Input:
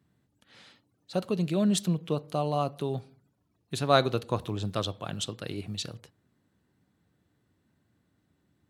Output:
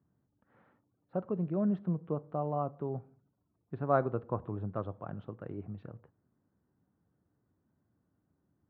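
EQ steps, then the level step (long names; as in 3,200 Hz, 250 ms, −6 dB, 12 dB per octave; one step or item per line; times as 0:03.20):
low-pass filter 1,400 Hz 24 dB per octave
−5.0 dB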